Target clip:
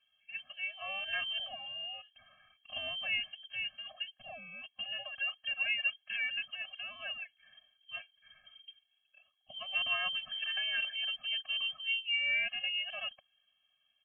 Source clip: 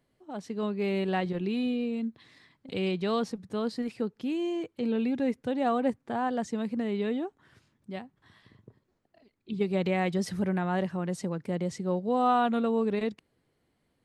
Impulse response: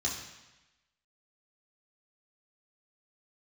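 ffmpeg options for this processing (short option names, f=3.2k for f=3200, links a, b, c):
-af "aecho=1:1:1.2:0.49,lowpass=f=2.8k:t=q:w=0.5098,lowpass=f=2.8k:t=q:w=0.6013,lowpass=f=2.8k:t=q:w=0.9,lowpass=f=2.8k:t=q:w=2.563,afreqshift=-3300,afftfilt=real='re*eq(mod(floor(b*sr/1024/260),2),0)':imag='im*eq(mod(floor(b*sr/1024/260),2),0)':win_size=1024:overlap=0.75"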